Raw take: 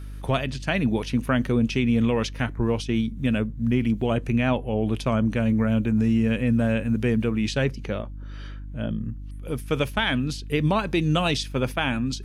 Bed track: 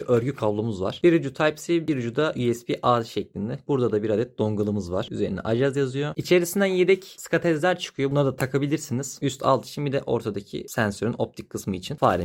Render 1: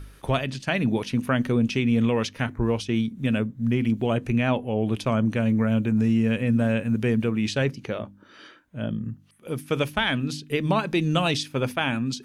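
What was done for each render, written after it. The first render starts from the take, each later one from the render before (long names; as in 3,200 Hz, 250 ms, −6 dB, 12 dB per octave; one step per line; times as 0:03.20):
hum removal 50 Hz, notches 6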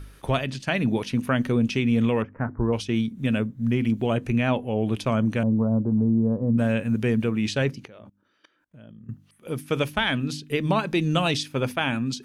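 0:02.22–0:02.73: inverse Chebyshev low-pass filter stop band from 3,700 Hz, stop band 50 dB
0:05.43–0:06.58: Butterworth low-pass 1,100 Hz 48 dB per octave
0:07.85–0:09.09: output level in coarse steps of 23 dB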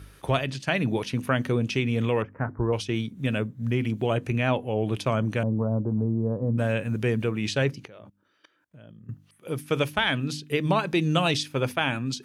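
high-pass filter 62 Hz
parametric band 230 Hz −8 dB 0.25 octaves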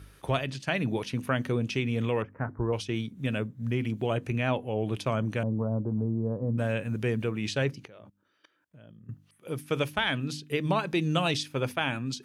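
level −3.5 dB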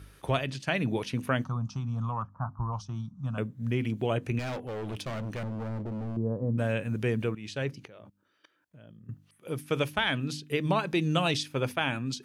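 0:01.44–0:03.38: drawn EQ curve 180 Hz 0 dB, 430 Hz −25 dB, 720 Hz −1 dB, 1,200 Hz +7 dB, 2,000 Hz −29 dB, 5,900 Hz −4 dB, 10,000 Hz −20 dB
0:04.39–0:06.17: gain into a clipping stage and back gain 32 dB
0:07.35–0:07.91: fade in, from −13.5 dB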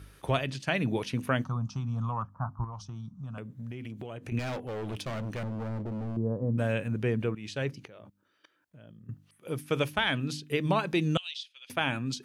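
0:02.64–0:04.32: downward compressor, threshold −36 dBFS
0:06.88–0:07.36: high-shelf EQ 3,700 Hz −8.5 dB
0:11.17–0:11.70: four-pole ladder band-pass 3,700 Hz, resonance 55%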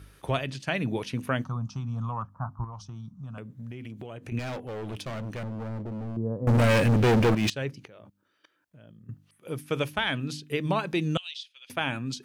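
0:06.47–0:07.50: leveller curve on the samples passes 5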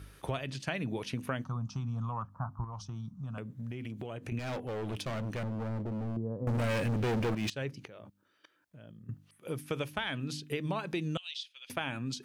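downward compressor 3 to 1, threshold −33 dBFS, peak gain reduction 10 dB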